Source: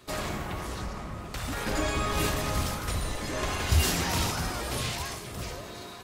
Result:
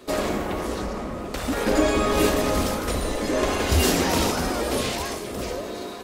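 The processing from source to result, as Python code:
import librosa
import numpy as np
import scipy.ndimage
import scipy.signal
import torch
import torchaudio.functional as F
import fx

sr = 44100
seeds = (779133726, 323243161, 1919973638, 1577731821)

y = fx.graphic_eq(x, sr, hz=(125, 250, 500), db=(-8, 8, 8))
y = y * librosa.db_to_amplitude(4.0)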